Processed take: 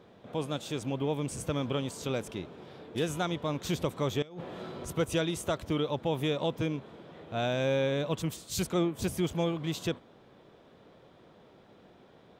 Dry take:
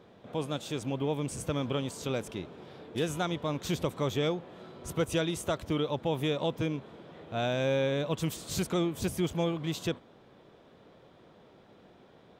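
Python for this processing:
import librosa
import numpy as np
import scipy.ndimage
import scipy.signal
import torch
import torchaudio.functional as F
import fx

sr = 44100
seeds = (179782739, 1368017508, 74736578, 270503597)

y = fx.over_compress(x, sr, threshold_db=-42.0, ratio=-1.0, at=(4.22, 4.85))
y = fx.band_widen(y, sr, depth_pct=100, at=(8.22, 8.99))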